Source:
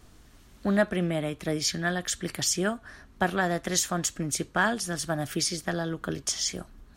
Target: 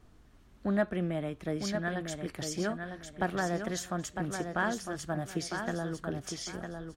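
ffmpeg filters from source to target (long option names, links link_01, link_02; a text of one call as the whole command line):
ffmpeg -i in.wav -filter_complex "[0:a]highshelf=frequency=2800:gain=-10.5,asplit=2[link_01][link_02];[link_02]aecho=0:1:954|1908|2862:0.473|0.128|0.0345[link_03];[link_01][link_03]amix=inputs=2:normalize=0,volume=-4.5dB" out.wav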